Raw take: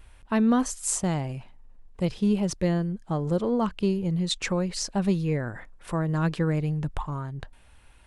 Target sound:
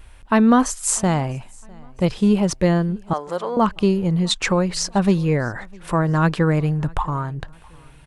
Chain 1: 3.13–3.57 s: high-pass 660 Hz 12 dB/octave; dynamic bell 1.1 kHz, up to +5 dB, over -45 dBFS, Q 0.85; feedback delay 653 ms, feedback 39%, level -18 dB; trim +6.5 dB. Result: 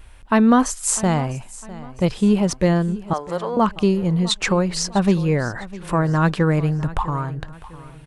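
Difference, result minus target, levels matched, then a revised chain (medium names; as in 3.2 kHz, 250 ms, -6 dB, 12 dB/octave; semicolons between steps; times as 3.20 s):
echo-to-direct +8.5 dB
3.13–3.57 s: high-pass 660 Hz 12 dB/octave; dynamic bell 1.1 kHz, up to +5 dB, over -45 dBFS, Q 0.85; feedback delay 653 ms, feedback 39%, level -26.5 dB; trim +6.5 dB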